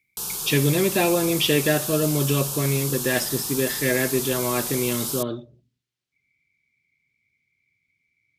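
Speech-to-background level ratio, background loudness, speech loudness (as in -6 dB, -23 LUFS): 3.5 dB, -27.0 LUFS, -23.5 LUFS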